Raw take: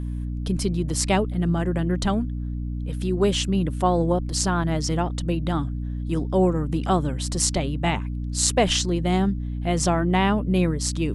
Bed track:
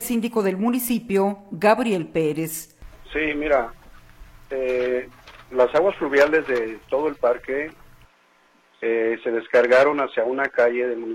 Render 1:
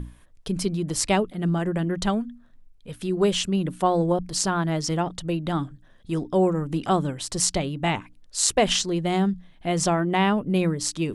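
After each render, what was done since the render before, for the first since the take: notches 60/120/180/240/300 Hz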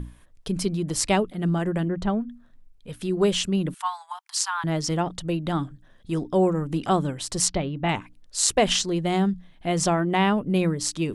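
1.88–2.29 LPF 1100 Hz 6 dB/oct; 3.74–4.64 steep high-pass 840 Hz 72 dB/oct; 7.48–7.89 air absorption 220 m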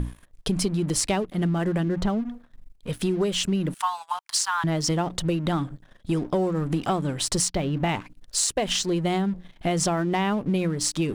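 compressor 12:1, threshold -28 dBFS, peak gain reduction 14 dB; sample leveller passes 2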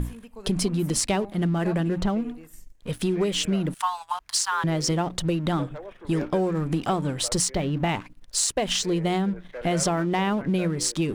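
add bed track -21.5 dB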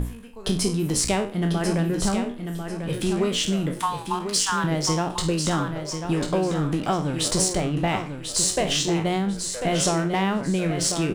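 spectral trails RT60 0.37 s; on a send: feedback echo 1.044 s, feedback 25%, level -7.5 dB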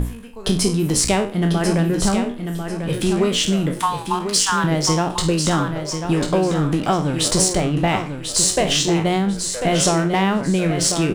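gain +5 dB

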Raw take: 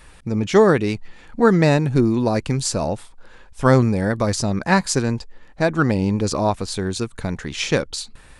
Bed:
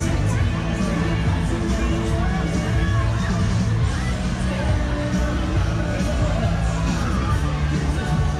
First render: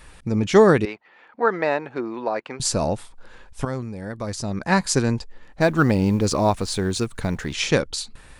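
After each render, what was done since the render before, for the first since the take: 0.85–2.6 BPF 570–2200 Hz; 3.65–4.96 fade in quadratic, from -15 dB; 5.61–7.53 G.711 law mismatch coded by mu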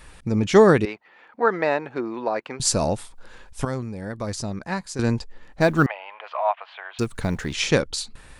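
2.67–3.75 high shelf 4600 Hz +5 dB; 4.39–4.99 fade out quadratic, to -13 dB; 5.86–6.99 Chebyshev band-pass 650–3100 Hz, order 4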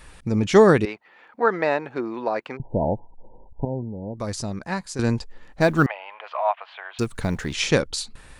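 2.57–4.17 brick-wall FIR low-pass 1000 Hz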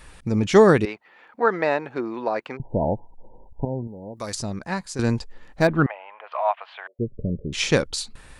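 3.87–4.35 tilt +2.5 dB/oct; 5.67–6.32 air absorption 450 m; 6.87–7.53 rippled Chebyshev low-pass 590 Hz, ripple 3 dB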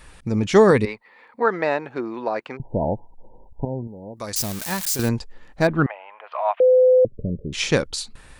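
0.7–1.43 ripple EQ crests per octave 0.95, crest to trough 8 dB; 4.36–5.09 switching spikes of -17.5 dBFS; 6.6–7.05 bleep 509 Hz -10.5 dBFS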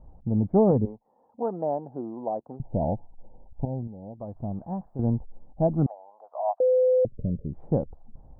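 elliptic low-pass 780 Hz, stop band 70 dB; bell 400 Hz -8.5 dB 0.99 oct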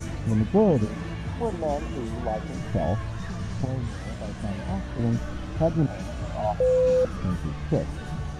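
add bed -12 dB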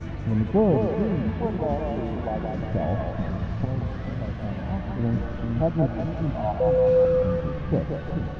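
air absorption 240 m; split-band echo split 350 Hz, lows 0.44 s, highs 0.177 s, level -4 dB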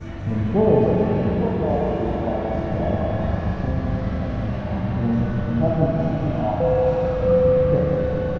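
doubler 39 ms -4 dB; digital reverb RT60 4.4 s, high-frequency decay 0.75×, pre-delay 5 ms, DRR -0.5 dB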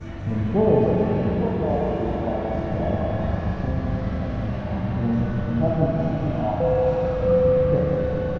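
gain -1.5 dB

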